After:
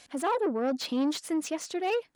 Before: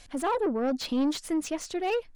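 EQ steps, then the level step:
Bessel high-pass filter 200 Hz, order 2
0.0 dB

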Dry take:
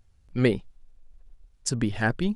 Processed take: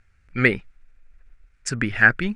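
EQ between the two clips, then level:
low-pass filter 9,500 Hz 24 dB per octave
flat-topped bell 1,800 Hz +14.5 dB 1.2 octaves
0.0 dB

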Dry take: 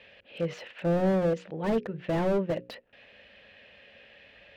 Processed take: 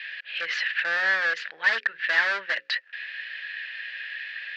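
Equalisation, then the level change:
high-pass with resonance 1,700 Hz, resonance Q 6.7
low-pass with resonance 4,600 Hz, resonance Q 2.8
+7.5 dB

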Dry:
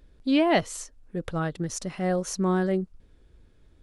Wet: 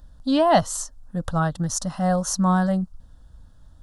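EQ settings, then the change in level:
phaser with its sweep stopped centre 950 Hz, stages 4
dynamic equaliser 2,300 Hz, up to +3 dB, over −54 dBFS, Q 4.2
+9.0 dB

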